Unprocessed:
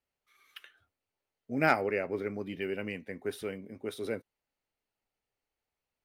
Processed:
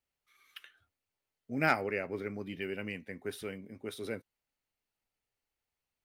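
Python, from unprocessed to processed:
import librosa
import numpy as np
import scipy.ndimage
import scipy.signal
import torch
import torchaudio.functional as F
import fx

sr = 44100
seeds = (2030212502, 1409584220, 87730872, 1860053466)

y = fx.peak_eq(x, sr, hz=520.0, db=-4.5, octaves=2.2)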